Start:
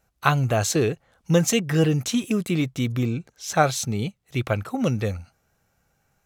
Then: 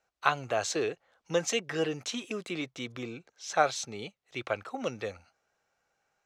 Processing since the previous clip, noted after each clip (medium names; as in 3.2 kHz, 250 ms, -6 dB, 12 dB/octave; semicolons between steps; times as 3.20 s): three-band isolator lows -18 dB, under 340 Hz, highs -23 dB, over 7.4 kHz; trim -5 dB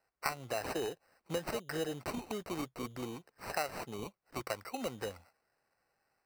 compression 3:1, threshold -32 dBFS, peak gain reduction 10.5 dB; sample-and-hold 13×; trim -2 dB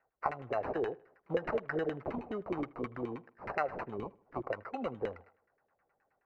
LFO low-pass saw down 9.5 Hz 370–2200 Hz; feedback echo behind a low-pass 78 ms, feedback 40%, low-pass 2.7 kHz, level -21.5 dB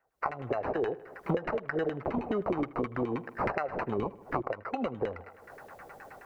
recorder AGC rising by 57 dB/s; trim -1.5 dB